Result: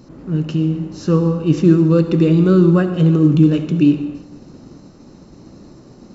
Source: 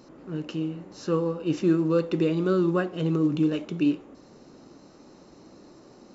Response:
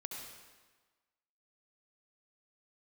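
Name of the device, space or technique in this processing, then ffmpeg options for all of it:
keyed gated reverb: -filter_complex "[0:a]asplit=3[a][b][c];[1:a]atrim=start_sample=2205[d];[b][d]afir=irnorm=-1:irlink=0[e];[c]apad=whole_len=270841[f];[e][f]sidechaingate=range=-33dB:threshold=-49dB:ratio=16:detection=peak,volume=-2.5dB[g];[a][g]amix=inputs=2:normalize=0,bass=f=250:g=13,treble=f=4k:g=2,volume=2dB"

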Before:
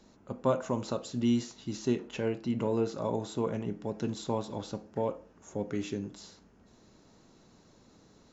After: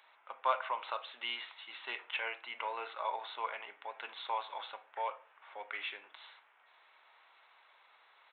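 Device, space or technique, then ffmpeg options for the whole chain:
musical greeting card: -af "aresample=8000,aresample=44100,highpass=f=880:w=0.5412,highpass=f=880:w=1.3066,equalizer=f=2.2k:t=o:w=0.3:g=6.5,volume=5.5dB"

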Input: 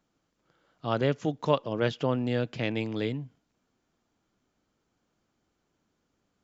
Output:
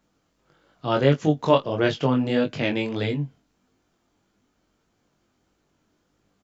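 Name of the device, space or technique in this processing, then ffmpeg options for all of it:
double-tracked vocal: -filter_complex "[0:a]asplit=2[a][b];[b]adelay=20,volume=-9.5dB[c];[a][c]amix=inputs=2:normalize=0,flanger=delay=19.5:depth=3.8:speed=1.6,volume=9dB"

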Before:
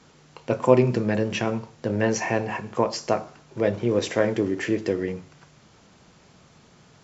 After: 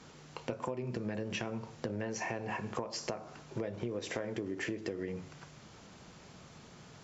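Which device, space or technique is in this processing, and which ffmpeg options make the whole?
serial compression, leveller first: -af "acompressor=threshold=-26dB:ratio=3,acompressor=threshold=-34dB:ratio=6"

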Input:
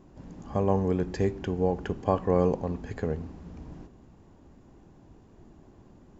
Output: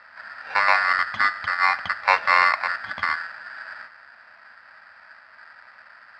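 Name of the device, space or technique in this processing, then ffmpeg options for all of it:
ring modulator pedal into a guitar cabinet: -af "aeval=exprs='val(0)*sgn(sin(2*PI*1600*n/s))':c=same,highpass=86,equalizer=f=88:t=q:w=4:g=7,equalizer=f=140:t=q:w=4:g=-8,equalizer=f=220:t=q:w=4:g=3,equalizer=f=420:t=q:w=4:g=-10,equalizer=f=640:t=q:w=4:g=8,equalizer=f=950:t=q:w=4:g=6,lowpass=f=3.9k:w=0.5412,lowpass=f=3.9k:w=1.3066,volume=5dB"

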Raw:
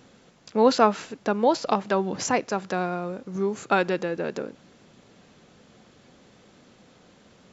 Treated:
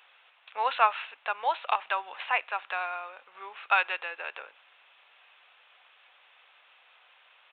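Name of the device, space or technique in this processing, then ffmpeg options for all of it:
musical greeting card: -af "aresample=8000,aresample=44100,highpass=f=840:w=0.5412,highpass=f=840:w=1.3066,equalizer=f=2.6k:t=o:w=0.43:g=7.5"

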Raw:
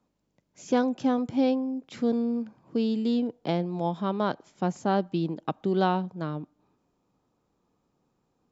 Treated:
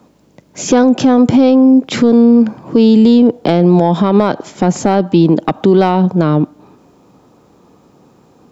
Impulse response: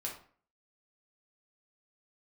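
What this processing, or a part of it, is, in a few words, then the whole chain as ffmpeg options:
mastering chain: -af "highpass=59,equalizer=f=390:t=o:w=2.4:g=3.5,acompressor=threshold=-25dB:ratio=2,asoftclip=type=tanh:threshold=-15dB,asoftclip=type=hard:threshold=-18dB,alimiter=level_in=25dB:limit=-1dB:release=50:level=0:latency=1,volume=-1dB"

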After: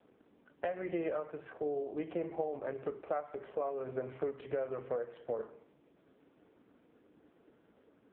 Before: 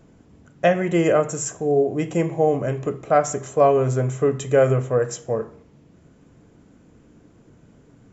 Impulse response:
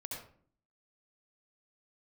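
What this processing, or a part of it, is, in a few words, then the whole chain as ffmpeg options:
voicemail: -af "highpass=350,lowpass=2.8k,acompressor=threshold=-27dB:ratio=12,volume=-4.5dB" -ar 8000 -c:a libopencore_amrnb -b:a 4750

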